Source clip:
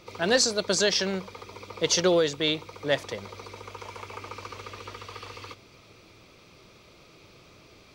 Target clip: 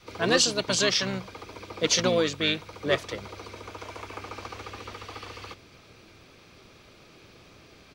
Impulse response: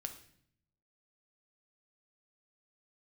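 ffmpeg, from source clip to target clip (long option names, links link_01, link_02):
-filter_complex "[0:a]adynamicequalizer=threshold=0.0112:dfrequency=370:dqfactor=1.3:tfrequency=370:tqfactor=1.3:attack=5:release=100:ratio=0.375:range=3:mode=cutabove:tftype=bell,bandreject=frequency=860:width=12,asplit=2[link_01][link_02];[link_02]asetrate=29433,aresample=44100,atempo=1.49831,volume=-6dB[link_03];[link_01][link_03]amix=inputs=2:normalize=0"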